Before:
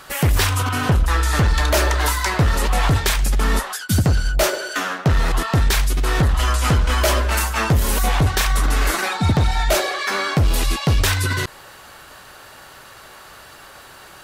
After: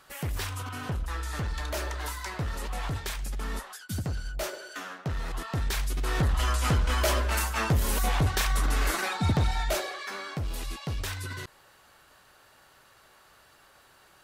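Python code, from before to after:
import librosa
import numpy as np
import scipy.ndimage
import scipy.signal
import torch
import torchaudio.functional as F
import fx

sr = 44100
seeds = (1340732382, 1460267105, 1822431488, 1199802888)

y = fx.gain(x, sr, db=fx.line((5.25, -15.5), (6.32, -8.0), (9.45, -8.0), (10.21, -16.0)))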